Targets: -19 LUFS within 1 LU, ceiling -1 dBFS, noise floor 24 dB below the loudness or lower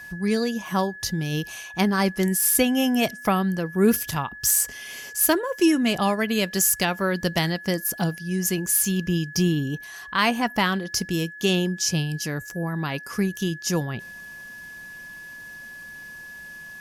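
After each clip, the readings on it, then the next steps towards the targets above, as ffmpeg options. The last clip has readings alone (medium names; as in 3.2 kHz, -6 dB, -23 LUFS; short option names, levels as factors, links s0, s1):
steady tone 1.7 kHz; tone level -38 dBFS; loudness -23.5 LUFS; peak level -7.0 dBFS; loudness target -19.0 LUFS
-> -af "bandreject=f=1700:w=30"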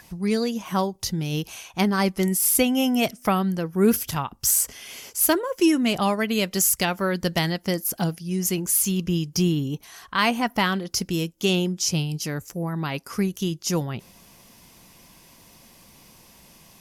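steady tone not found; loudness -23.5 LUFS; peak level -7.0 dBFS; loudness target -19.0 LUFS
-> -af "volume=1.68"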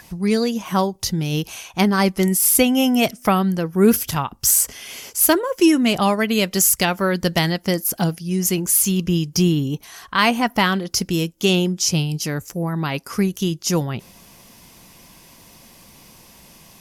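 loudness -19.0 LUFS; peak level -2.5 dBFS; noise floor -49 dBFS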